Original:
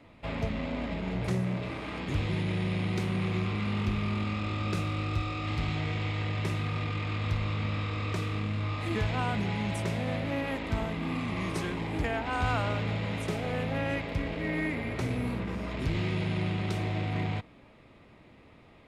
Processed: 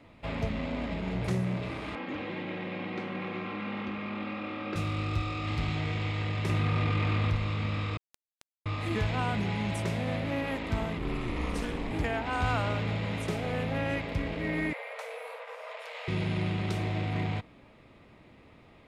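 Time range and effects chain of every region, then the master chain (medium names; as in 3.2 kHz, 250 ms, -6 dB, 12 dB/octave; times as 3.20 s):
1.95–4.76 s: band-pass 260–2500 Hz + comb 3.7 ms, depth 54%
6.49–7.36 s: treble shelf 3.8 kHz -6 dB + level flattener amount 70%
7.97–8.66 s: comb filter that takes the minimum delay 0.41 ms + amplifier tone stack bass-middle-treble 10-0-1 + word length cut 6-bit, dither none
10.98–11.91 s: ring modulator 120 Hz + bass shelf 120 Hz +6.5 dB + flutter echo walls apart 10.8 m, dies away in 0.5 s
14.73–16.08 s: Chebyshev high-pass 450 Hz, order 10 + peaking EQ 5.3 kHz -6 dB 1.8 oct
whole clip: none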